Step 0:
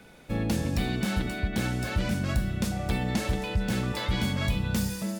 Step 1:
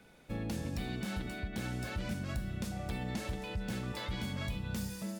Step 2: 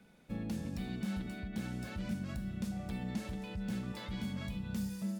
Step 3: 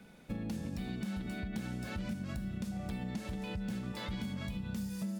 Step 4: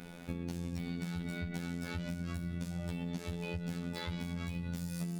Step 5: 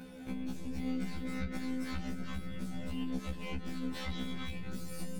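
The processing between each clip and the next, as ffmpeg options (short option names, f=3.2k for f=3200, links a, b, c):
-af "alimiter=limit=-19.5dB:level=0:latency=1:release=159,volume=-8dB"
-af "equalizer=f=200:t=o:w=0.59:g=9,volume=-5.5dB"
-af "acompressor=threshold=-41dB:ratio=6,volume=6dB"
-af "afftfilt=real='hypot(re,im)*cos(PI*b)':imag='0':win_size=2048:overlap=0.75,acompressor=threshold=-49dB:ratio=2.5,volume=11.5dB"
-af "aeval=exprs='(tanh(63.1*val(0)+0.8)-tanh(0.8))/63.1':c=same,afftfilt=real='re*1.73*eq(mod(b,3),0)':imag='im*1.73*eq(mod(b,3),0)':win_size=2048:overlap=0.75,volume=11.5dB"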